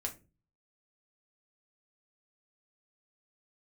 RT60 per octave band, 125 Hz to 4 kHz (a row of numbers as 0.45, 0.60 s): 0.65, 0.50, 0.40, 0.25, 0.25, 0.20 s